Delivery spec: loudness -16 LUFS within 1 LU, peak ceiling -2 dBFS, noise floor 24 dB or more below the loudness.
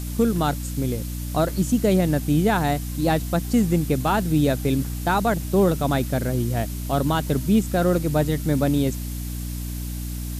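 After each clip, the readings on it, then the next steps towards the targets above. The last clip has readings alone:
hum 60 Hz; highest harmonic 300 Hz; hum level -27 dBFS; noise floor -30 dBFS; noise floor target -47 dBFS; loudness -22.5 LUFS; peak level -7.5 dBFS; loudness target -16.0 LUFS
-> de-hum 60 Hz, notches 5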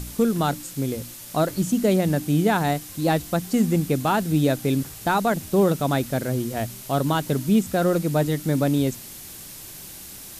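hum not found; noise floor -40 dBFS; noise floor target -47 dBFS
-> noise print and reduce 7 dB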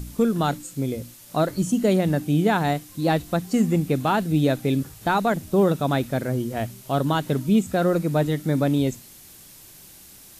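noise floor -47 dBFS; loudness -23.0 LUFS; peak level -8.0 dBFS; loudness target -16.0 LUFS
-> trim +7 dB; peak limiter -2 dBFS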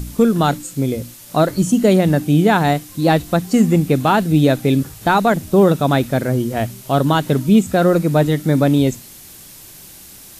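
loudness -16.0 LUFS; peak level -2.0 dBFS; noise floor -40 dBFS

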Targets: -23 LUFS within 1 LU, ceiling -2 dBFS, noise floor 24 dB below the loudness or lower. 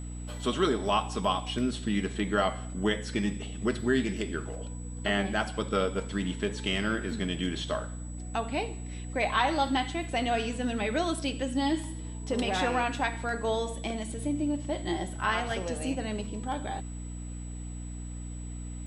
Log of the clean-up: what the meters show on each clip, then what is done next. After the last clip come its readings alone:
hum 60 Hz; highest harmonic 300 Hz; hum level -36 dBFS; steady tone 7.9 kHz; tone level -49 dBFS; loudness -31.0 LUFS; peak level -12.5 dBFS; loudness target -23.0 LUFS
-> de-hum 60 Hz, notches 5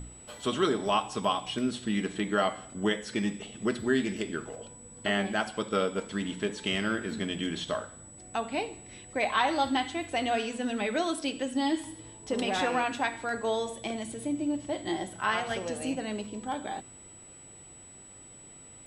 hum not found; steady tone 7.9 kHz; tone level -49 dBFS
-> band-stop 7.9 kHz, Q 30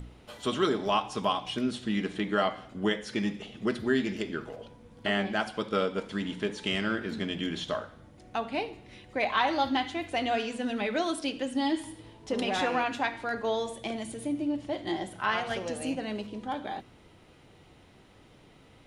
steady tone not found; loudness -31.0 LUFS; peak level -13.0 dBFS; loudness target -23.0 LUFS
-> trim +8 dB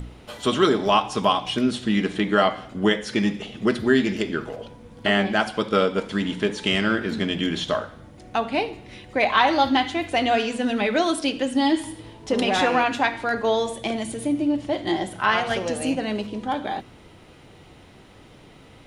loudness -23.0 LUFS; peak level -5.0 dBFS; noise floor -49 dBFS

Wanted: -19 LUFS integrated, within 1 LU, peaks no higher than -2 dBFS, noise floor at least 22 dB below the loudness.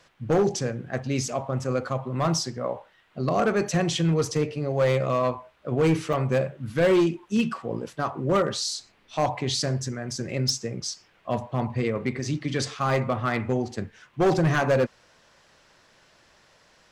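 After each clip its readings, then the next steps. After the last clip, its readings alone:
clipped samples 1.3%; clipping level -16.0 dBFS; dropouts 1; longest dropout 4.9 ms; loudness -26.0 LUFS; peak level -16.0 dBFS; loudness target -19.0 LUFS
-> clip repair -16 dBFS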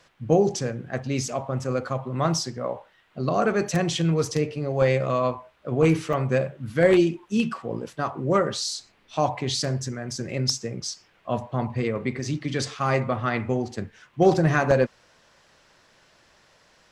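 clipped samples 0.0%; dropouts 1; longest dropout 4.9 ms
-> interpolate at 6.13 s, 4.9 ms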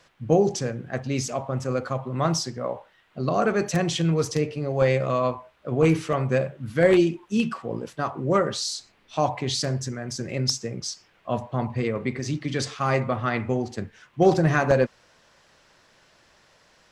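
dropouts 0; loudness -25.0 LUFS; peak level -7.0 dBFS; loudness target -19.0 LUFS
-> trim +6 dB; peak limiter -2 dBFS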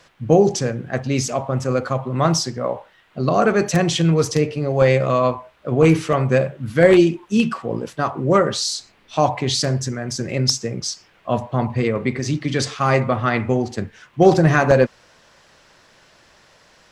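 loudness -19.0 LUFS; peak level -2.0 dBFS; noise floor -55 dBFS

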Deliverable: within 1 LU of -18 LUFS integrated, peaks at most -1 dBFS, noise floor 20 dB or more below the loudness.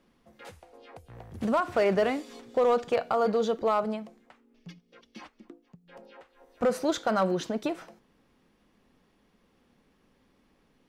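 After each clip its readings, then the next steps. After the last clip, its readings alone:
clipped samples 0.4%; clipping level -17.5 dBFS; loudness -28.0 LUFS; peak level -17.5 dBFS; loudness target -18.0 LUFS
-> clip repair -17.5 dBFS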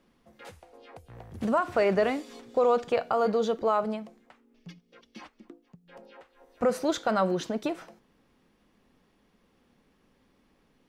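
clipped samples 0.0%; loudness -27.5 LUFS; peak level -14.5 dBFS; loudness target -18.0 LUFS
-> trim +9.5 dB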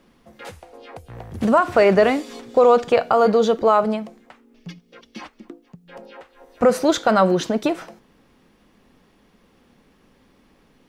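loudness -18.0 LUFS; peak level -5.0 dBFS; noise floor -58 dBFS

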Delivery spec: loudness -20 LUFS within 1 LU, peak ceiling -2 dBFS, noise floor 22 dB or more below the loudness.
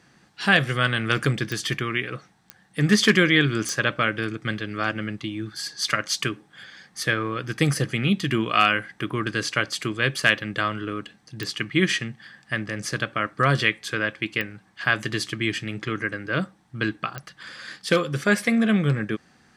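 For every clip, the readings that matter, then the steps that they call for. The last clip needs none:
clicks found 6; loudness -24.0 LUFS; peak level -2.0 dBFS; loudness target -20.0 LUFS
-> de-click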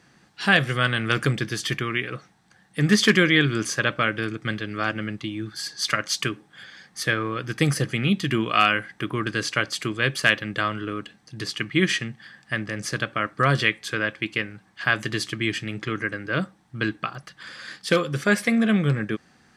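clicks found 0; loudness -24.0 LUFS; peak level -2.0 dBFS; loudness target -20.0 LUFS
-> trim +4 dB; peak limiter -2 dBFS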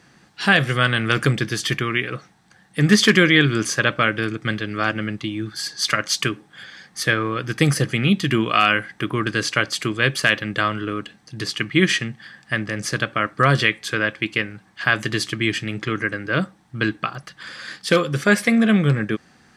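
loudness -20.5 LUFS; peak level -2.0 dBFS; noise floor -55 dBFS

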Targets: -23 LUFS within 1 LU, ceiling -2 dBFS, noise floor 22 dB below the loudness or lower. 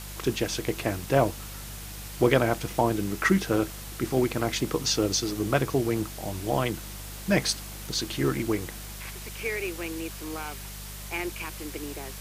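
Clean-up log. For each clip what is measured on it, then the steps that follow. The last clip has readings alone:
hum 50 Hz; highest harmonic 200 Hz; hum level -39 dBFS; noise floor -40 dBFS; noise floor target -50 dBFS; loudness -28.0 LUFS; peak level -5.0 dBFS; loudness target -23.0 LUFS
-> de-hum 50 Hz, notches 4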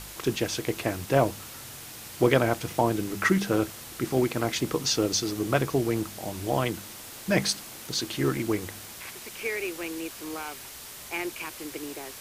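hum not found; noise floor -43 dBFS; noise floor target -50 dBFS
-> noise reduction 7 dB, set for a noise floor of -43 dBFS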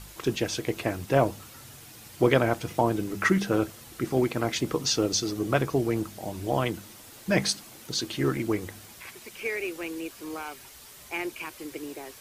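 noise floor -48 dBFS; noise floor target -50 dBFS
-> noise reduction 6 dB, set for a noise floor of -48 dBFS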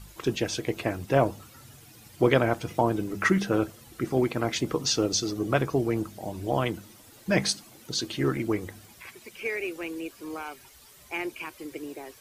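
noise floor -53 dBFS; loudness -28.0 LUFS; peak level -5.5 dBFS; loudness target -23.0 LUFS
-> trim +5 dB; peak limiter -2 dBFS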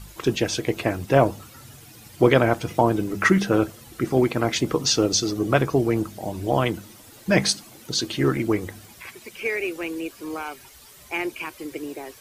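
loudness -23.0 LUFS; peak level -2.0 dBFS; noise floor -48 dBFS

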